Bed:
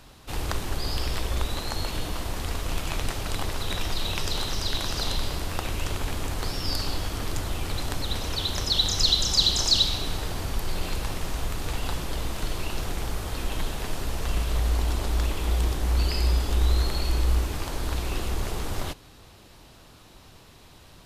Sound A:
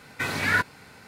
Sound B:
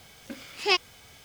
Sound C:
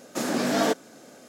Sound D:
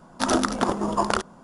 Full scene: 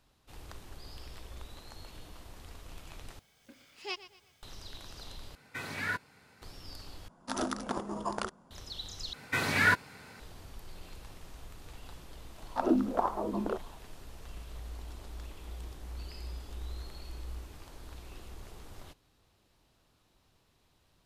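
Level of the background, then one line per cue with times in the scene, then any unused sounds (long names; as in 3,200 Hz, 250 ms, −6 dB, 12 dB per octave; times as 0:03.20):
bed −19 dB
0:03.19: overwrite with B −15.5 dB + repeating echo 121 ms, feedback 36%, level −15 dB
0:05.35: overwrite with A −11.5 dB
0:07.08: overwrite with D −12 dB
0:09.13: overwrite with A −2 dB
0:12.36: mix in D + LFO wah 1.7 Hz 230–1,000 Hz, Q 2.6
not used: C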